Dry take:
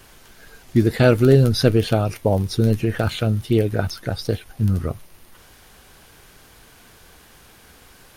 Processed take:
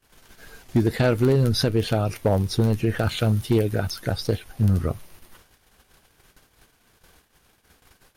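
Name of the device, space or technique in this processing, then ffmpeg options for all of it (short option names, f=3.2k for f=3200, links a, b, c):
limiter into clipper: -filter_complex "[0:a]agate=range=-25dB:threshold=-46dB:ratio=16:detection=peak,asettb=1/sr,asplit=3[a][b][c];[a]atrim=end=3.174[d];[b]atrim=start=3.17:end=4.12,asetpts=PTS-STARTPTS,afade=t=in:d=0.004:c=qsin,afade=t=out:st=0.946:d=0.004:c=qsin,highshelf=f=5.2k:g=5[e];[c]atrim=start=4.116[f];[d][e]acrossfade=d=0.004:c1=hsin:c2=qsin[g];[g][f]acrossfade=d=0.004:c1=qsin:c2=hsin,alimiter=limit=-9.5dB:level=0:latency=1:release=299,asoftclip=type=hard:threshold=-12.5dB"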